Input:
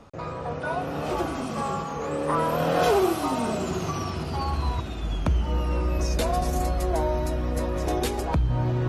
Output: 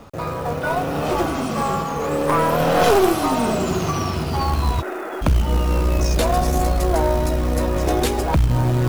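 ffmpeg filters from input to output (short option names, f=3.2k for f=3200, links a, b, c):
-filter_complex "[0:a]asplit=3[a][b][c];[a]afade=t=out:st=4.81:d=0.02[d];[b]highpass=f=350:w=0.5412,highpass=f=350:w=1.3066,equalizer=f=370:t=q:w=4:g=10,equalizer=f=570:t=q:w=4:g=5,equalizer=f=840:t=q:w=4:g=4,equalizer=f=1.4k:t=q:w=4:g=8,equalizer=f=1.9k:t=q:w=4:g=7,lowpass=f=2.2k:w=0.5412,lowpass=f=2.2k:w=1.3066,afade=t=in:st=4.81:d=0.02,afade=t=out:st=5.21:d=0.02[e];[c]afade=t=in:st=5.21:d=0.02[f];[d][e][f]amix=inputs=3:normalize=0,acrusher=bits=5:mode=log:mix=0:aa=0.000001,aeval=exprs='0.251*(cos(1*acos(clip(val(0)/0.251,-1,1)))-cos(1*PI/2))+0.0708*(cos(2*acos(clip(val(0)/0.251,-1,1)))-cos(2*PI/2))+0.0158*(cos(5*acos(clip(val(0)/0.251,-1,1)))-cos(5*PI/2))':c=same,volume=5dB"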